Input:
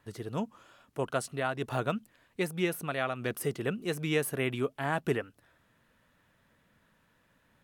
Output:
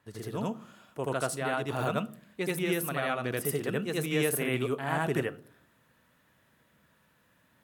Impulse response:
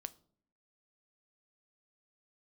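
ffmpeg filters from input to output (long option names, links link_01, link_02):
-filter_complex "[0:a]highpass=66,asplit=2[link_01][link_02];[link_02]highshelf=frequency=10000:gain=10[link_03];[1:a]atrim=start_sample=2205,adelay=81[link_04];[link_03][link_04]afir=irnorm=-1:irlink=0,volume=5.5dB[link_05];[link_01][link_05]amix=inputs=2:normalize=0,volume=-2.5dB"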